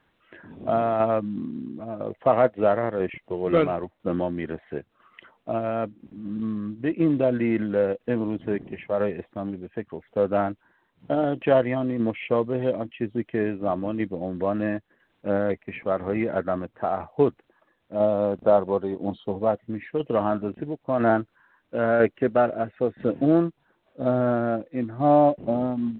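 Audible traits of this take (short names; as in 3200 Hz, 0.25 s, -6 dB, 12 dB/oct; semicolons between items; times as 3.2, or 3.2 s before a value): tremolo saw down 1 Hz, depth 40%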